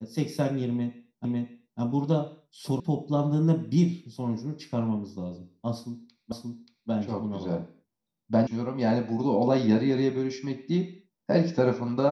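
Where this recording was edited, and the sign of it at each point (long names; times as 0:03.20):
0:01.25: the same again, the last 0.55 s
0:02.80: cut off before it has died away
0:06.32: the same again, the last 0.58 s
0:08.47: cut off before it has died away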